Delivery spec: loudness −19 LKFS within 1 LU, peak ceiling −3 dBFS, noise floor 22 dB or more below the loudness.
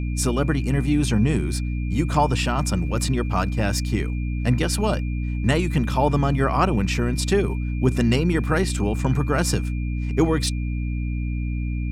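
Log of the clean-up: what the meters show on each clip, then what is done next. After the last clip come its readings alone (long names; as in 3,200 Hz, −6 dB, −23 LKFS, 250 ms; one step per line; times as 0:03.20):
mains hum 60 Hz; hum harmonics up to 300 Hz; level of the hum −23 dBFS; interfering tone 2,400 Hz; level of the tone −42 dBFS; integrated loudness −22.5 LKFS; sample peak −5.0 dBFS; target loudness −19.0 LKFS
→ mains-hum notches 60/120/180/240/300 Hz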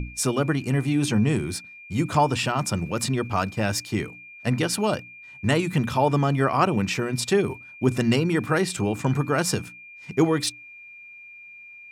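mains hum none found; interfering tone 2,400 Hz; level of the tone −42 dBFS
→ notch filter 2,400 Hz, Q 30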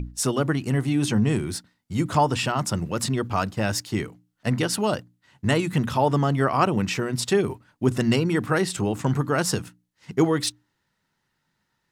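interfering tone none found; integrated loudness −24.5 LKFS; sample peak −7.0 dBFS; target loudness −19.0 LKFS
→ level +5.5 dB
brickwall limiter −3 dBFS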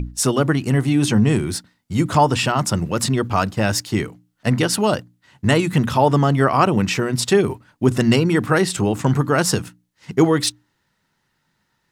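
integrated loudness −19.0 LKFS; sample peak −3.0 dBFS; background noise floor −70 dBFS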